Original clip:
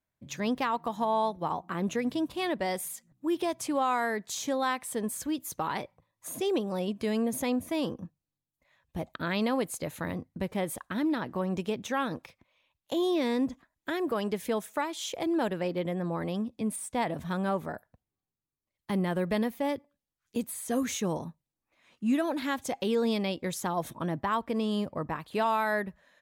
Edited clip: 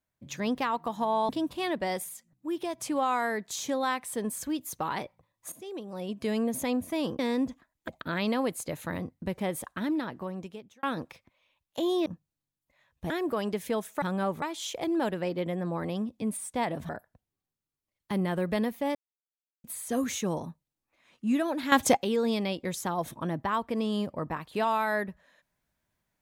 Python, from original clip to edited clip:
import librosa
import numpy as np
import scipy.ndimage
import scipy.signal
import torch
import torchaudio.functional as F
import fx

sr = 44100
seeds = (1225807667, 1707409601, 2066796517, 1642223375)

y = fx.edit(x, sr, fx.cut(start_s=1.29, length_s=0.79),
    fx.clip_gain(start_s=2.83, length_s=0.74, db=-3.5),
    fx.fade_in_from(start_s=6.31, length_s=0.73, curve='qua', floor_db=-13.5),
    fx.swap(start_s=7.98, length_s=1.04, other_s=13.2, other_length_s=0.69),
    fx.fade_out_span(start_s=10.94, length_s=1.03),
    fx.move(start_s=17.28, length_s=0.4, to_s=14.81),
    fx.silence(start_s=19.74, length_s=0.69),
    fx.clip_gain(start_s=22.51, length_s=0.25, db=11.0), tone=tone)